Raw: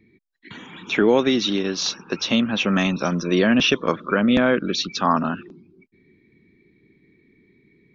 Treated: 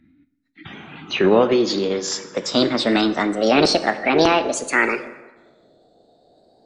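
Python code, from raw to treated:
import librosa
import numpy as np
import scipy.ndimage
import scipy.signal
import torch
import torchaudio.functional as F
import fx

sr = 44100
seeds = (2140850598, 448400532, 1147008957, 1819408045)

y = fx.speed_glide(x, sr, from_pct=73, to_pct=166)
y = fx.high_shelf(y, sr, hz=4300.0, db=-6.5)
y = fx.formant_shift(y, sr, semitones=4)
y = fx.rev_plate(y, sr, seeds[0], rt60_s=1.2, hf_ratio=0.65, predelay_ms=0, drr_db=10.5)
y = y * 10.0 ** (2.0 / 20.0)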